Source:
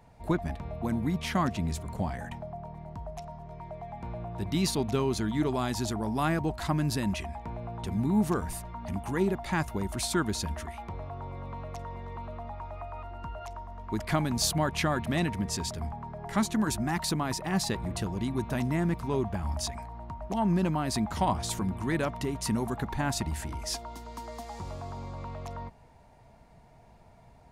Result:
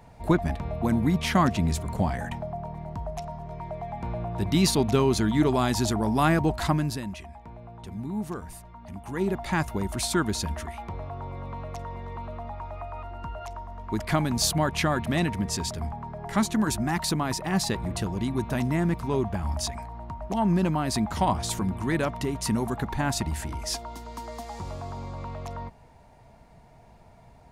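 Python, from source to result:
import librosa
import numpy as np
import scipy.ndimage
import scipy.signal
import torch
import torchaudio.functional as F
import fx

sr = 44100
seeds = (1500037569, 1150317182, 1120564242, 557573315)

y = fx.gain(x, sr, db=fx.line((6.66, 6.0), (7.1, -6.0), (8.96, -6.0), (9.37, 3.0)))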